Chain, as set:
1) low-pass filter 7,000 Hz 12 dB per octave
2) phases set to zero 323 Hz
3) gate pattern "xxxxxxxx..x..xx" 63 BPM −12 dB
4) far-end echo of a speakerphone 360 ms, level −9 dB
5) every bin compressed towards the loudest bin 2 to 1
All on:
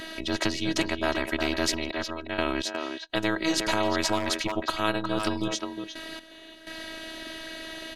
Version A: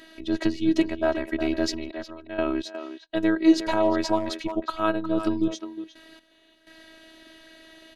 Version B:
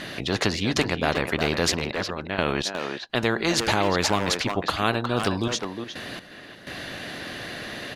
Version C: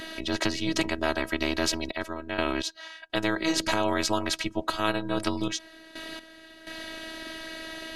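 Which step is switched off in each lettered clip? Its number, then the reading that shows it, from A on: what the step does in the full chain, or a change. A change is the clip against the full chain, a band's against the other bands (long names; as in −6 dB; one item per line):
5, 250 Hz band +9.5 dB
2, 125 Hz band +5.5 dB
4, change in momentary loudness spread +2 LU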